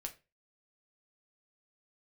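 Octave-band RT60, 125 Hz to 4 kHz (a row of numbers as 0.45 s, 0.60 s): 0.35 s, 0.30 s, 0.30 s, 0.25 s, 0.25 s, 0.25 s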